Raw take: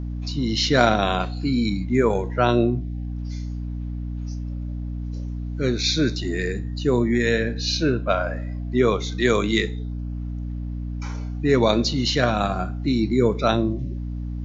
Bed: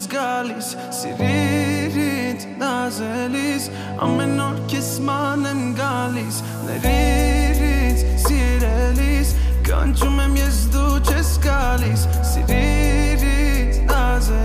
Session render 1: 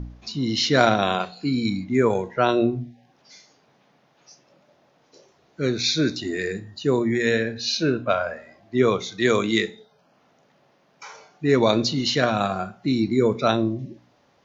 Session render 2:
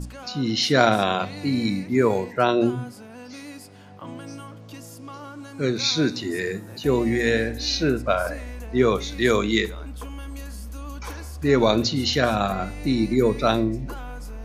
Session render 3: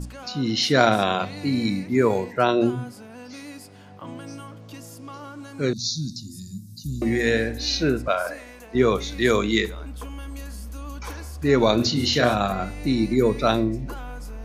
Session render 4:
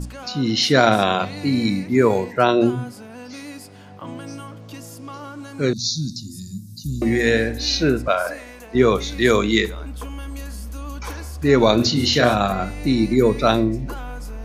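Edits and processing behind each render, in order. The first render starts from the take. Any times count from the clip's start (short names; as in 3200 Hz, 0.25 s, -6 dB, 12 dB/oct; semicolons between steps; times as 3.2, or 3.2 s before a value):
de-hum 60 Hz, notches 5
add bed -18.5 dB
5.73–7.02 elliptic band-stop 200–4700 Hz; 8.08–8.75 HPF 420 Hz 6 dB/oct; 11.76–12.34 doubler 33 ms -4.5 dB
gain +3.5 dB; limiter -1 dBFS, peak gain reduction 3 dB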